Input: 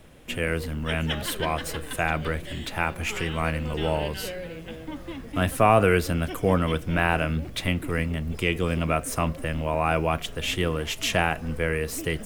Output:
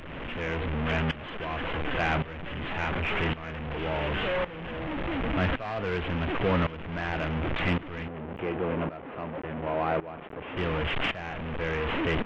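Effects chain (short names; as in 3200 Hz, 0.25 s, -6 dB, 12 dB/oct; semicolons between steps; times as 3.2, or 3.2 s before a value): delta modulation 16 kbps, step -20 dBFS; 8.08–10.57 band-pass 470 Hz, Q 0.57; soft clip -15.5 dBFS, distortion -14 dB; tremolo saw up 0.9 Hz, depth 85%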